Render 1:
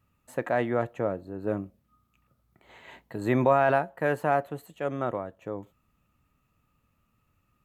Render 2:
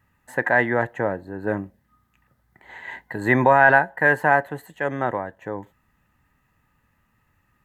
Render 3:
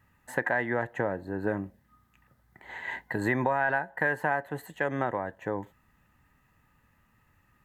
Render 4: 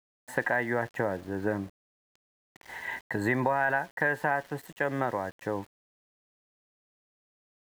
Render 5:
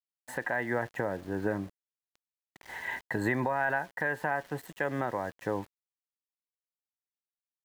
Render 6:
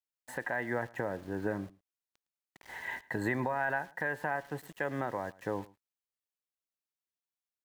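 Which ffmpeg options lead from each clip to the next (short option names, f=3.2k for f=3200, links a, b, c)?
-af "superequalizer=9b=2.24:11b=3.98,volume=4dB"
-af "acompressor=threshold=-25dB:ratio=4"
-af "aeval=exprs='val(0)*gte(abs(val(0)),0.00447)':c=same"
-af "alimiter=limit=-17dB:level=0:latency=1:release=321"
-af "aecho=1:1:110:0.0794,volume=-3dB"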